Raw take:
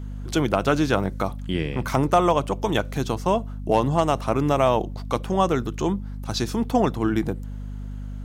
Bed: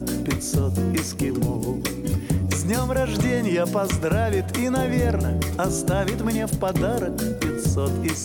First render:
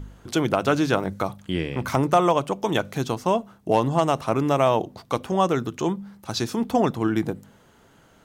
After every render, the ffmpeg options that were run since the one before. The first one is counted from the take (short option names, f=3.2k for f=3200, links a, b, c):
-af "bandreject=f=50:t=h:w=4,bandreject=f=100:t=h:w=4,bandreject=f=150:t=h:w=4,bandreject=f=200:t=h:w=4,bandreject=f=250:t=h:w=4"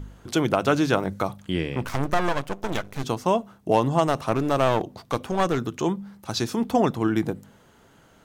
-filter_complex "[0:a]asettb=1/sr,asplit=3[a][b][c];[a]atrim=end=1.844[d];[b]atrim=start=1.84:end=3.04,asetpts=PTS-STARTPTS,afade=t=in:d=0.004:c=qsin,afade=t=out:st=1.196:d=0.004:c=qsin,aeval=exprs='max(val(0),0)':c=same[e];[c]atrim=start=3.036[f];[d][e]acrossfade=d=0.004:c1=hsin:c2=qsin[g];[g][f]acrossfade=d=0.004:c1=qsin:c2=hsin,asettb=1/sr,asplit=3[h][i][j];[h]atrim=end=4.074[k];[i]atrim=start=4.07:end=5.59,asetpts=PTS-STARTPTS,afade=t=in:d=0.004:c=qsin,afade=t=out:st=1.516:d=0.004:c=qsin,aeval=exprs='clip(val(0),-1,0.0531)':c=same[l];[j]atrim=start=5.586[m];[k][l]acrossfade=d=0.004:c1=hsin:c2=qsin[n];[n][m]acrossfade=d=0.004:c1=qsin:c2=hsin"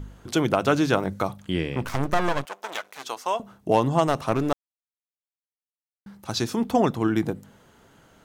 -filter_complex "[0:a]asettb=1/sr,asplit=3[a][b][c];[a]atrim=end=2.454[d];[b]atrim=start=2.45:end=3.4,asetpts=PTS-STARTPTS,afade=t=in:d=0.004:c=qsin,afade=t=out:st=0.946:d=0.004:c=qsin,highpass=740[e];[c]atrim=start=3.396[f];[d][e]acrossfade=d=0.004:c1=hsin:c2=qsin[g];[g][f]acrossfade=d=0.004:c1=qsin:c2=hsin,asplit=3[h][i][j];[h]atrim=end=4.53,asetpts=PTS-STARTPTS,afade=t=out:st=4.526:d=0.004:c=hsin[k];[i]atrim=start=4.53:end=6.06,asetpts=PTS-STARTPTS,volume=0[l];[j]atrim=start=6.06,asetpts=PTS-STARTPTS,afade=t=in:d=0.004:c=hsin[m];[k][l][m]concat=n=3:v=0:a=1"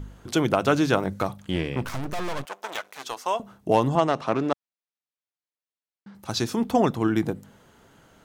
-filter_complex "[0:a]asettb=1/sr,asplit=3[a][b][c];[a]atrim=end=1.094[d];[b]atrim=start=1.09:end=3.19,asetpts=PTS-STARTPTS,afade=t=in:d=0.004:c=qsin,afade=t=out:st=2.096:d=0.004:c=qsin,aeval=exprs='clip(val(0),-1,0.0668)':c=same[e];[c]atrim=start=3.186[f];[d][e]acrossfade=d=0.004:c1=hsin:c2=qsin[g];[g][f]acrossfade=d=0.004:c1=qsin:c2=hsin,asettb=1/sr,asplit=3[h][i][j];[h]atrim=end=3.954[k];[i]atrim=start=3.95:end=6.15,asetpts=PTS-STARTPTS,afade=t=in:d=0.004:c=qsin,afade=t=out:st=2.196:d=0.004:c=qsin,highpass=160,lowpass=5.2k[l];[j]atrim=start=6.146[m];[k][l]acrossfade=d=0.004:c1=hsin:c2=qsin[n];[n][m]acrossfade=d=0.004:c1=qsin:c2=hsin"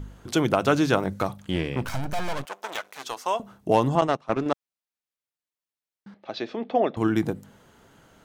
-filter_complex "[0:a]asettb=1/sr,asplit=3[a][b][c];[a]atrim=end=1.884[d];[b]atrim=start=1.88:end=2.33,asetpts=PTS-STARTPTS,afade=t=in:d=0.004:c=qsin,afade=t=out:st=0.446:d=0.004:c=qsin,aecho=1:1:1.3:0.51,atrim=end_sample=19845[e];[c]atrim=start=2.326[f];[d][e]acrossfade=d=0.004:c1=hsin:c2=qsin[g];[g][f]acrossfade=d=0.004:c1=qsin:c2=hsin,asettb=1/sr,asplit=3[h][i][j];[h]atrim=end=4.014[k];[i]atrim=start=4.01:end=4.46,asetpts=PTS-STARTPTS,afade=t=in:d=0.004:c=qsin,afade=t=out:st=0.446:d=0.004:c=qsin,agate=range=-18dB:threshold=-26dB:ratio=16:release=100:detection=peak[l];[j]atrim=start=4.456[m];[k][l]acrossfade=d=0.004:c1=hsin:c2=qsin[n];[n][m]acrossfade=d=0.004:c1=qsin:c2=hsin,asettb=1/sr,asplit=3[o][p][q];[o]atrim=end=6.144[r];[p]atrim=start=6.14:end=6.97,asetpts=PTS-STARTPTS,afade=t=in:d=0.004:c=qsin,afade=t=out:st=0.826:d=0.004:c=qsin,highpass=370,equalizer=f=610:t=q:w=4:g=6,equalizer=f=970:t=q:w=4:g=-9,equalizer=f=1.4k:t=q:w=4:g=-7,equalizer=f=2.9k:t=q:w=4:g=-3,lowpass=f=3.4k:w=0.5412,lowpass=f=3.4k:w=1.3066[s];[q]atrim=start=6.966[t];[r][s]acrossfade=d=0.004:c1=hsin:c2=qsin[u];[u][t]acrossfade=d=0.004:c1=qsin:c2=hsin"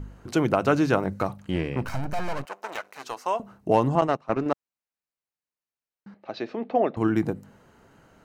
-af "highshelf=f=3.5k:g=-7,bandreject=f=3.4k:w=7"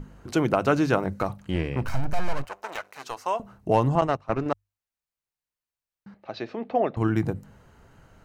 -af "bandreject=f=50:t=h:w=6,bandreject=f=100:t=h:w=6,asubboost=boost=3.5:cutoff=120"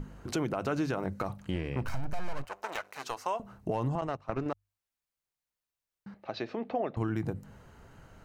-af "alimiter=limit=-15dB:level=0:latency=1:release=50,acompressor=threshold=-33dB:ratio=2"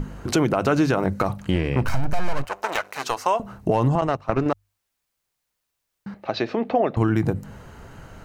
-af "volume=11.5dB"